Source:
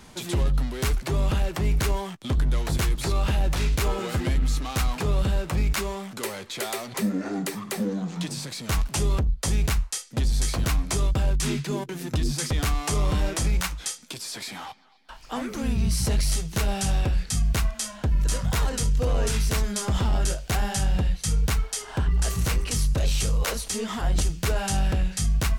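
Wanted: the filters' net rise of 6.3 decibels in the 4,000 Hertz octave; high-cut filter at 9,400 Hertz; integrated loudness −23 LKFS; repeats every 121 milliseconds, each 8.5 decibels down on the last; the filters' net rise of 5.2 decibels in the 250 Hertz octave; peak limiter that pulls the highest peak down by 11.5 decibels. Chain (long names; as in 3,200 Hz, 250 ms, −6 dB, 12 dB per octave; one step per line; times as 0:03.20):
low-pass filter 9,400 Hz
parametric band 250 Hz +7 dB
parametric band 4,000 Hz +8 dB
brickwall limiter −22.5 dBFS
repeating echo 121 ms, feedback 38%, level −8.5 dB
level +7 dB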